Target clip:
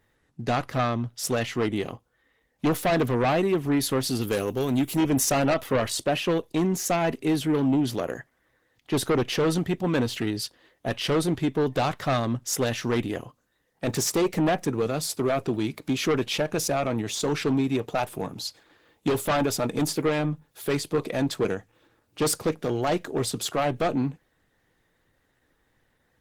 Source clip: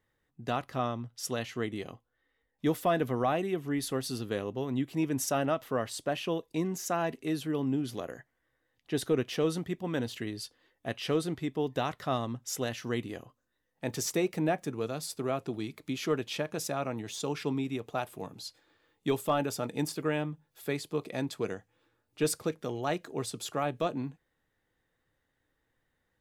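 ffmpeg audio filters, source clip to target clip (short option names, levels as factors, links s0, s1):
-filter_complex "[0:a]asettb=1/sr,asplit=3[s0][s1][s2];[s0]atrim=end=4.214[s3];[s1]atrim=start=4.21:end=4.97,asetpts=PTS-STARTPTS,afade=t=in:d=0.004:c=qsin,afade=t=out:st=0.756:d=0.004:c=qsin,aemphasis=mode=production:type=75fm[s4];[s2]atrim=start=4.966[s5];[s3][s4]acrossfade=d=0.004:c1=hsin:c2=qsin[s6];[s6][s5]acrossfade=d=0.004:c1=qsin:c2=hsin,asplit=2[s7][s8];[s8]aeval=exprs='0.133*sin(PI/2*2.82*val(0)/0.133)':c=same,volume=0.562[s9];[s7][s9]amix=inputs=2:normalize=0" -ar 48000 -c:a libopus -b:a 16k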